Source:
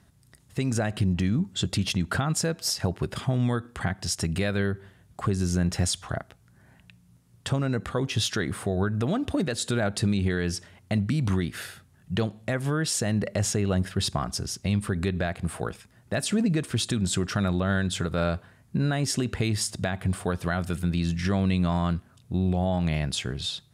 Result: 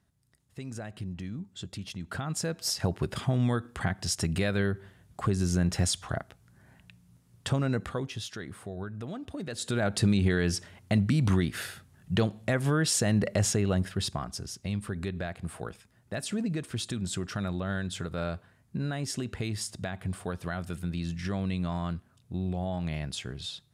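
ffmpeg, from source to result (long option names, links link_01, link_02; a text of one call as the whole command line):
ffmpeg -i in.wav -af "volume=11dB,afade=type=in:start_time=1.97:duration=0.91:silence=0.266073,afade=type=out:start_time=7.74:duration=0.45:silence=0.298538,afade=type=in:start_time=9.39:duration=0.65:silence=0.237137,afade=type=out:start_time=13.31:duration=0.97:silence=0.421697" out.wav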